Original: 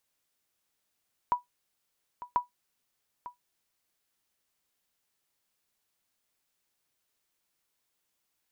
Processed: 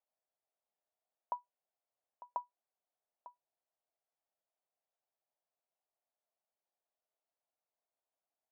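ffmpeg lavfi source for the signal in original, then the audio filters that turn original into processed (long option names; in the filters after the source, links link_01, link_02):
-f lavfi -i "aevalsrc='0.141*(sin(2*PI*978*mod(t,1.04))*exp(-6.91*mod(t,1.04)/0.14)+0.168*sin(2*PI*978*max(mod(t,1.04)-0.9,0))*exp(-6.91*max(mod(t,1.04)-0.9,0)/0.14))':duration=2.08:sample_rate=44100"
-af "bandpass=frequency=670:width_type=q:width=3.7:csg=0"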